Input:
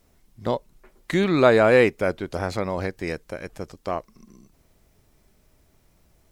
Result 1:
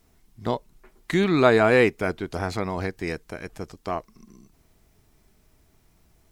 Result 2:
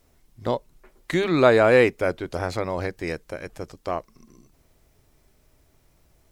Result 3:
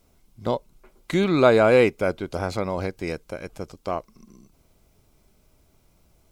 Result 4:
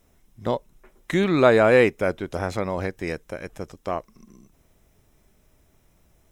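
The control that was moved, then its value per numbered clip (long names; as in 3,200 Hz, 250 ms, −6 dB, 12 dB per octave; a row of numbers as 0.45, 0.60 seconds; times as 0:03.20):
notch filter, centre frequency: 550, 200, 1,800, 4,500 Hertz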